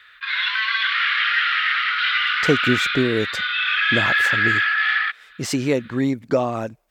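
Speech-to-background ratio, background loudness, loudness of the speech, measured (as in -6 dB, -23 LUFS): -5.0 dB, -19.0 LUFS, -24.0 LUFS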